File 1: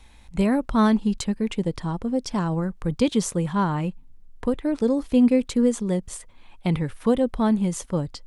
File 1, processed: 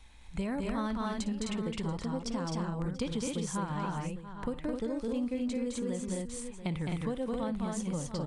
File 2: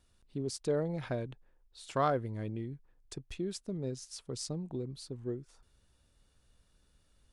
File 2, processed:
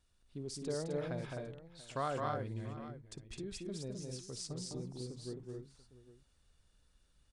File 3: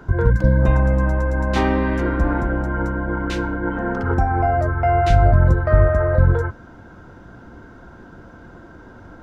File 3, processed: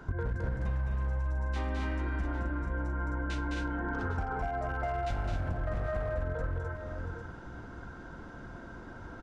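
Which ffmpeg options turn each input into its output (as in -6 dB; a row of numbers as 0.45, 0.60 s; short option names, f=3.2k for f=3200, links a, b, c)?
-filter_complex "[0:a]equalizer=f=320:t=o:w=2.8:g=-3.5,aresample=22050,aresample=44100,volume=12.5dB,asoftclip=hard,volume=-12.5dB,asplit=2[a][b];[b]aecho=0:1:57|211|259|685|803:0.133|0.668|0.631|0.112|0.141[c];[a][c]amix=inputs=2:normalize=0,acompressor=threshold=-26dB:ratio=6,volume=-4.5dB"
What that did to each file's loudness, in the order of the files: -11.5, -5.0, -16.0 LU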